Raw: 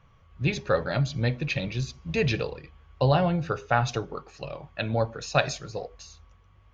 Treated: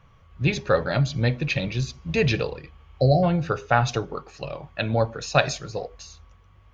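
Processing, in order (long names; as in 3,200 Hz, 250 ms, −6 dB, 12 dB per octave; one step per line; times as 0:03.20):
healed spectral selection 0:02.79–0:03.21, 760–3,900 Hz before
level +3.5 dB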